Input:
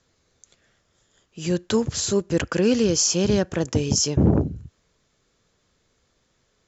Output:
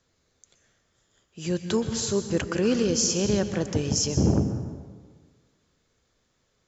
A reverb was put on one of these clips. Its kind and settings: plate-style reverb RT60 1.5 s, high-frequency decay 0.65×, pre-delay 110 ms, DRR 8.5 dB; trim -4 dB

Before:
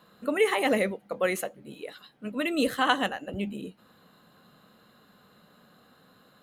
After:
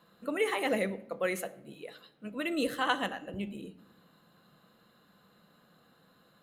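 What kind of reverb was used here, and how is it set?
simulated room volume 2300 m³, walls furnished, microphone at 0.76 m; trim -5.5 dB

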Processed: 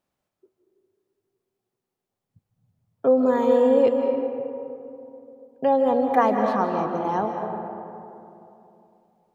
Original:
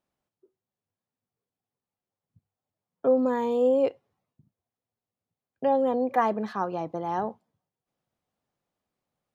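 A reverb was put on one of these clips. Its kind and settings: algorithmic reverb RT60 2.9 s, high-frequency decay 0.4×, pre-delay 115 ms, DRR 3.5 dB; trim +3.5 dB

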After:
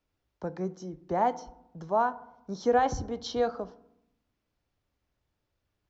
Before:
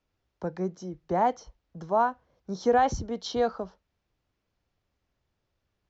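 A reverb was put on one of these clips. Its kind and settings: FDN reverb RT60 0.82 s, low-frequency decay 1.4×, high-frequency decay 0.4×, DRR 14.5 dB; trim -2 dB

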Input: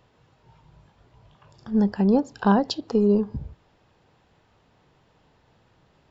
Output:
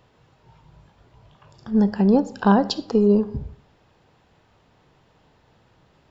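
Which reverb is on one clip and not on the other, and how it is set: algorithmic reverb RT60 0.62 s, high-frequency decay 0.7×, pre-delay 10 ms, DRR 16 dB; trim +2.5 dB

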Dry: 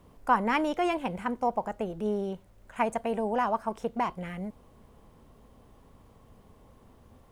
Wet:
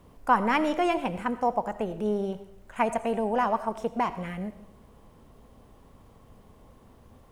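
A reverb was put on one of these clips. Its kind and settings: algorithmic reverb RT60 0.67 s, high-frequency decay 1×, pre-delay 40 ms, DRR 13 dB; trim +2 dB

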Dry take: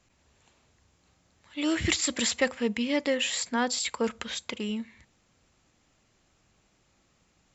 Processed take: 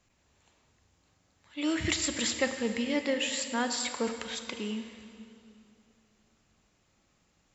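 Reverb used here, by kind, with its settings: plate-style reverb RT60 2.7 s, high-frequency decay 0.85×, DRR 6.5 dB; trim -3.5 dB

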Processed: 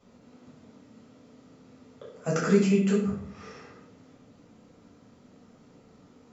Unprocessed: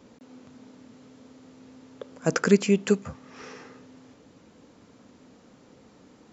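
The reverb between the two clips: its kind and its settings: simulated room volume 880 m³, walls furnished, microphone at 6.7 m; trim -11.5 dB

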